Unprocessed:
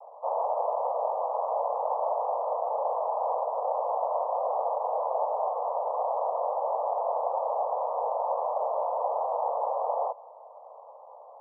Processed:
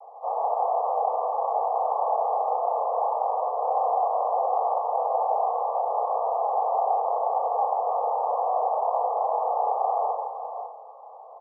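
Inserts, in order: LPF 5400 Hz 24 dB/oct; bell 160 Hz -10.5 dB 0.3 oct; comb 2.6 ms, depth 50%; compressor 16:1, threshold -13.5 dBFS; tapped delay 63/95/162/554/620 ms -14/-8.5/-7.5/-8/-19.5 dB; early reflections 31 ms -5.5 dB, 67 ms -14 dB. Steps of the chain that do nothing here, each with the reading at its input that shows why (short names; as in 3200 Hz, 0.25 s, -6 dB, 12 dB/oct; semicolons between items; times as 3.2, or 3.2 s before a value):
LPF 5400 Hz: input band ends at 1300 Hz; bell 160 Hz: input band starts at 400 Hz; compressor, threshold -13.5 dBFS: input peak -16.0 dBFS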